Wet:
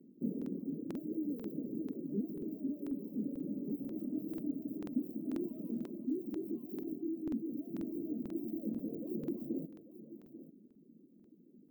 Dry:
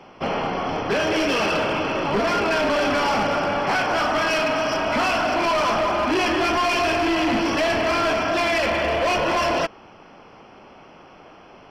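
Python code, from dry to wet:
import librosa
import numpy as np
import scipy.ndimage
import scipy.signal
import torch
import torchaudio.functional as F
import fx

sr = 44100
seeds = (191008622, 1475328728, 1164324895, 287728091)

p1 = scipy.ndimage.median_filter(x, 15, mode='constant')
p2 = scipy.signal.sosfilt(scipy.signal.cheby2(4, 60, [740.0, 9400.0], 'bandstop', fs=sr, output='sos'), p1)
p3 = fx.dereverb_blind(p2, sr, rt60_s=0.75)
p4 = scipy.signal.sosfilt(scipy.signal.butter(4, 260.0, 'highpass', fs=sr, output='sos'), p3)
p5 = fx.dynamic_eq(p4, sr, hz=490.0, q=1.7, threshold_db=-53.0, ratio=4.0, max_db=4)
p6 = fx.rider(p5, sr, range_db=10, speed_s=0.5)
p7 = fx.quant_float(p6, sr, bits=6, at=(5.61, 6.56))
p8 = fx.vibrato(p7, sr, rate_hz=6.3, depth_cents=54.0)
p9 = p8 + fx.echo_single(p8, sr, ms=843, db=-14.0, dry=0)
p10 = fx.buffer_crackle(p9, sr, first_s=0.37, period_s=0.49, block=2048, kind='repeat')
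y = p10 * librosa.db_to_amplitude(2.5)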